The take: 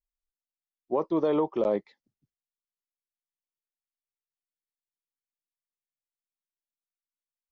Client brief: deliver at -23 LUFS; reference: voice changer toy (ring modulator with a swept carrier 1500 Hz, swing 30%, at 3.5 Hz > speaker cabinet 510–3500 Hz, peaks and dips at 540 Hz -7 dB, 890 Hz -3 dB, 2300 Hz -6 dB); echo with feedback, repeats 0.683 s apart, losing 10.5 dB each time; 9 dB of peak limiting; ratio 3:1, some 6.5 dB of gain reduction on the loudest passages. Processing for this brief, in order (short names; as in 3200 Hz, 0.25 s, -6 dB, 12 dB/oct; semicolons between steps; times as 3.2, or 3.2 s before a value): compressor 3:1, threshold -30 dBFS; limiter -28.5 dBFS; feedback echo 0.683 s, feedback 30%, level -10.5 dB; ring modulator with a swept carrier 1500 Hz, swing 30%, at 3.5 Hz; speaker cabinet 510–3500 Hz, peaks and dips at 540 Hz -7 dB, 890 Hz -3 dB, 2300 Hz -6 dB; gain +20 dB